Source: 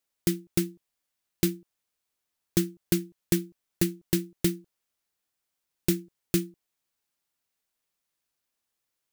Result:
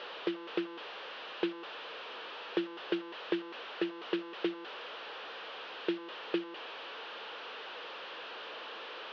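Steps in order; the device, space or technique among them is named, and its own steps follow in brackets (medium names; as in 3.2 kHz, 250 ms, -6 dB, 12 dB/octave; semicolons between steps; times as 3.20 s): digital answering machine (band-pass 360–3100 Hz; one-bit delta coder 32 kbps, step -38.5 dBFS; cabinet simulation 410–3400 Hz, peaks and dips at 470 Hz +7 dB, 710 Hz -3 dB, 2.1 kHz -9 dB, 3 kHz +3 dB); trim +2.5 dB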